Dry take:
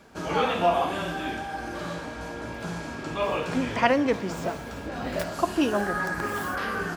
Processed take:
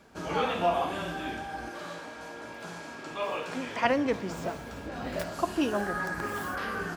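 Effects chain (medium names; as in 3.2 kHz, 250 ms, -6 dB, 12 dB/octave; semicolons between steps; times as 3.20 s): 1.69–3.85 s: high-pass 410 Hz 6 dB/octave; trim -4 dB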